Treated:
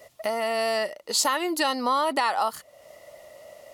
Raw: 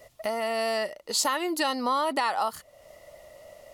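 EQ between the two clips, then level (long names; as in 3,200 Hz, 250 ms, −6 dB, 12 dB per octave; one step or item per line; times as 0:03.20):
high-pass filter 170 Hz 6 dB per octave
+2.5 dB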